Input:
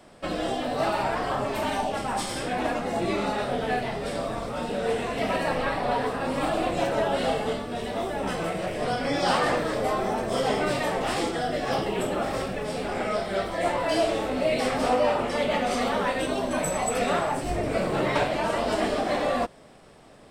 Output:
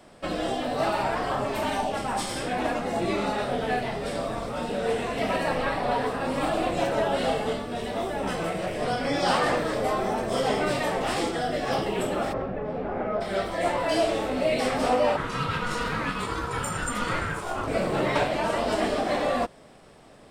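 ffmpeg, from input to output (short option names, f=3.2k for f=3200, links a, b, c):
-filter_complex "[0:a]asplit=3[a][b][c];[a]afade=t=out:st=12.32:d=0.02[d];[b]lowpass=1.3k,afade=t=in:st=12.32:d=0.02,afade=t=out:st=13.2:d=0.02[e];[c]afade=t=in:st=13.2:d=0.02[f];[d][e][f]amix=inputs=3:normalize=0,asplit=3[g][h][i];[g]afade=t=out:st=15.16:d=0.02[j];[h]aeval=exprs='val(0)*sin(2*PI*720*n/s)':c=same,afade=t=in:st=15.16:d=0.02,afade=t=out:st=17.66:d=0.02[k];[i]afade=t=in:st=17.66:d=0.02[l];[j][k][l]amix=inputs=3:normalize=0"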